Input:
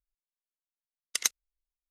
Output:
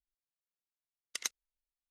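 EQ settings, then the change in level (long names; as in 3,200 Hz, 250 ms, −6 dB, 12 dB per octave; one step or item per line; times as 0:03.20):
high-shelf EQ 7,800 Hz −7.5 dB
−6.5 dB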